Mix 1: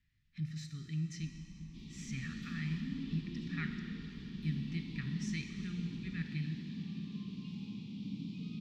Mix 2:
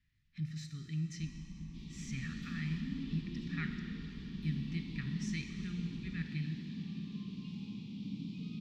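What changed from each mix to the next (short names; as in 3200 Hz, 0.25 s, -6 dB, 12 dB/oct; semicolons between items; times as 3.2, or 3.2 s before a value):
first sound +4.5 dB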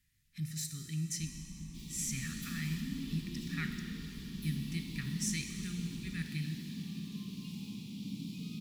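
master: remove air absorption 200 m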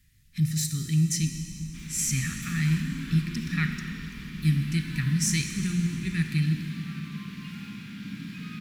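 speech +9.5 dB; second sound: remove Butterworth band-stop 1600 Hz, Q 0.56; master: add low shelf 250 Hz +6 dB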